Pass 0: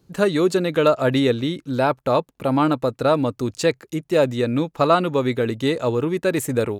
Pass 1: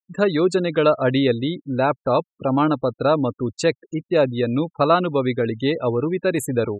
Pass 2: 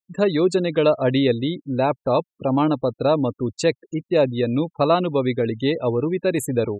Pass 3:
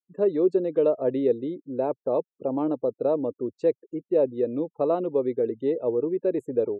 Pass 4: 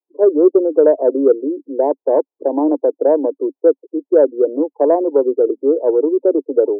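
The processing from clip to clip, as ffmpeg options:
-af "afftfilt=real='re*gte(hypot(re,im),0.0316)':imag='im*gte(hypot(re,im),0.0316)':win_size=1024:overlap=0.75"
-af "equalizer=f=1400:w=3.4:g=-9"
-af "bandpass=f=430:t=q:w=2:csg=0,volume=0.891"
-af "asuperpass=centerf=530:order=20:qfactor=0.69,acontrast=75,volume=1.58"

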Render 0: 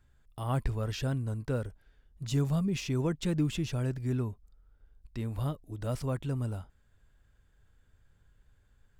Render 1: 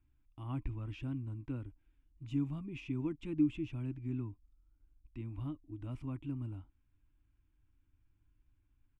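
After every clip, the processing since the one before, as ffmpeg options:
-af "firequalizer=gain_entry='entry(120,0);entry(190,-9);entry(300,11);entry(440,-16);entry(990,-3);entry(1700,-12);entry(2400,2);entry(4300,-19);entry(8800,-18);entry(14000,-27)':delay=0.05:min_phase=1,volume=0.422"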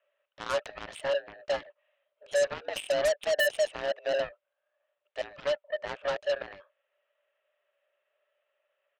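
-af "highpass=f=280:t=q:w=0.5412,highpass=f=280:t=q:w=1.307,lowpass=f=3000:t=q:w=0.5176,lowpass=f=3000:t=q:w=0.7071,lowpass=f=3000:t=q:w=1.932,afreqshift=290,aeval=exprs='0.0668*sin(PI/2*3.16*val(0)/0.0668)':c=same,aeval=exprs='0.0668*(cos(1*acos(clip(val(0)/0.0668,-1,1)))-cos(1*PI/2))+0.015*(cos(7*acos(clip(val(0)/0.0668,-1,1)))-cos(7*PI/2))':c=same,volume=1.33"

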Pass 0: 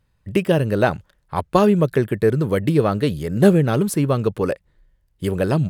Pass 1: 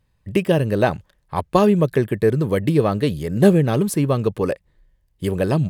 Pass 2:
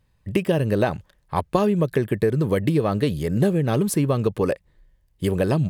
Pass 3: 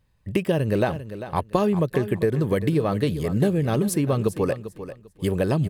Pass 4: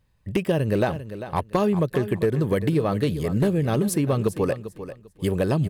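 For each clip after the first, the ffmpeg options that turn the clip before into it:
-af "bandreject=f=1400:w=7.8"
-af "acompressor=threshold=0.141:ratio=6,volume=1.12"
-af "aecho=1:1:396|792|1188:0.237|0.0522|0.0115,volume=0.841"
-af "asoftclip=type=hard:threshold=0.211"

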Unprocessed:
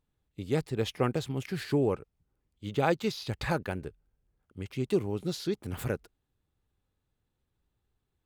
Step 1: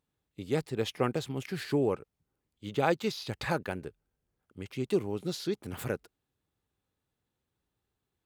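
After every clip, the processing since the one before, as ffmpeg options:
-af "highpass=f=150:p=1"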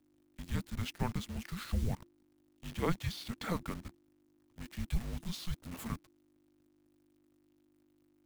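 -af "aeval=exprs='val(0)+0.000891*(sin(2*PI*50*n/s)+sin(2*PI*2*50*n/s)/2+sin(2*PI*3*50*n/s)/3+sin(2*PI*4*50*n/s)/4+sin(2*PI*5*50*n/s)/5)':c=same,acrusher=bits=8:dc=4:mix=0:aa=0.000001,afreqshift=-350,volume=0.562"

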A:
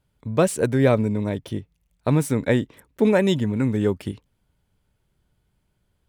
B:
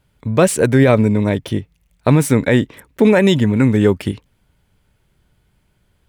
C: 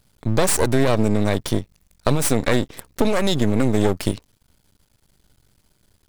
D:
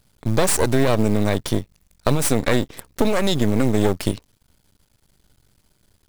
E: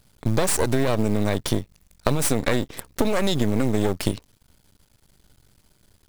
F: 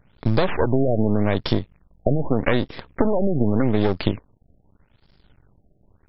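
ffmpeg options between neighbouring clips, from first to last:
-af "equalizer=f=2100:w=1.2:g=3.5,alimiter=level_in=3.16:limit=0.891:release=50:level=0:latency=1,volume=0.841"
-af "highshelf=f=3500:t=q:w=1.5:g=7.5,acompressor=threshold=0.2:ratio=4,aeval=exprs='max(val(0),0)':c=same,volume=1.41"
-af "acrusher=bits=7:mode=log:mix=0:aa=0.000001"
-af "acompressor=threshold=0.112:ratio=3,volume=1.26"
-af "afftfilt=real='re*lt(b*sr/1024,740*pow(5600/740,0.5+0.5*sin(2*PI*0.83*pts/sr)))':imag='im*lt(b*sr/1024,740*pow(5600/740,0.5+0.5*sin(2*PI*0.83*pts/sr)))':win_size=1024:overlap=0.75,volume=1.33"

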